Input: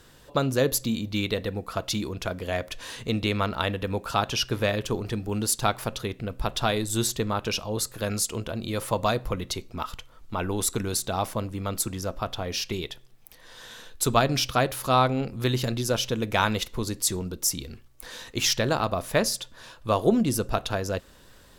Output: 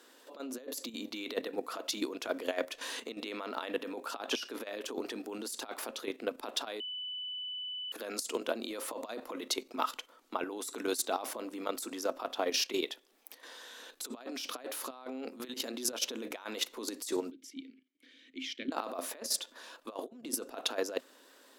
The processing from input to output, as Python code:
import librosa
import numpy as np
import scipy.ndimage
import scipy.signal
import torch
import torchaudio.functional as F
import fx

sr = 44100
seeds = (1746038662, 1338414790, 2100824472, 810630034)

y = fx.vowel_filter(x, sr, vowel='i', at=(17.31, 18.72))
y = fx.edit(y, sr, fx.bleep(start_s=6.8, length_s=1.12, hz=2990.0, db=-21.5), tone=tone)
y = fx.over_compress(y, sr, threshold_db=-29.0, ratio=-0.5)
y = scipy.signal.sosfilt(scipy.signal.ellip(4, 1.0, 40, 250.0, 'highpass', fs=sr, output='sos'), y)
y = fx.level_steps(y, sr, step_db=10)